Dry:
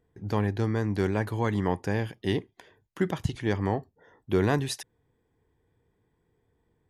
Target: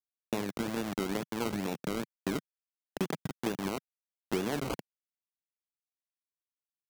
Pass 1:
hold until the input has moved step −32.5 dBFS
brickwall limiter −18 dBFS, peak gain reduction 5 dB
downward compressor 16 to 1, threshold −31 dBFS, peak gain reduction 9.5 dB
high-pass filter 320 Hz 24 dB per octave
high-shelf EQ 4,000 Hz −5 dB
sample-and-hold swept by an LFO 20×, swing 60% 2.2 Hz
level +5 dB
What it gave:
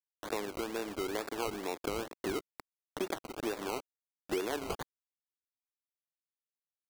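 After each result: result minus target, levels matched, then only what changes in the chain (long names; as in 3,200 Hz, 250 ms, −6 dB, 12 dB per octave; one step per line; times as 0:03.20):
125 Hz band −8.0 dB; hold until the input has moved: distortion −9 dB
change: high-pass filter 160 Hz 24 dB per octave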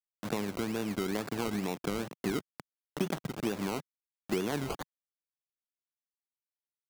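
hold until the input has moved: distortion −9 dB
change: hold until the input has moved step −24 dBFS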